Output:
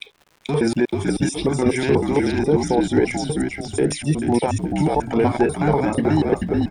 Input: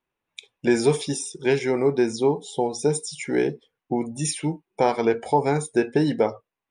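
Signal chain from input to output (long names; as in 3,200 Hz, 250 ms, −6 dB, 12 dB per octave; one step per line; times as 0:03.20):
slices reordered back to front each 122 ms, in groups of 4
brickwall limiter −17.5 dBFS, peak gain reduction 10 dB
echo with shifted repeats 436 ms, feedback 32%, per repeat −49 Hz, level −3.5 dB
auto-filter notch square 3.7 Hz 460–6,700 Hz
surface crackle 240 per second −45 dBFS
high-shelf EQ 3,600 Hz −10.5 dB
level +9 dB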